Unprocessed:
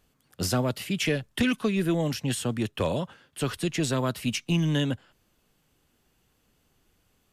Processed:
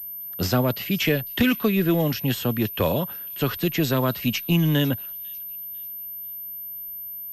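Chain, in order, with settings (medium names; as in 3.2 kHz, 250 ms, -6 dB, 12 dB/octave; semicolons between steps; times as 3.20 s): feedback echo behind a high-pass 498 ms, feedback 38%, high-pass 3.8 kHz, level -17.5 dB; class-D stage that switches slowly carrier 13 kHz; trim +4.5 dB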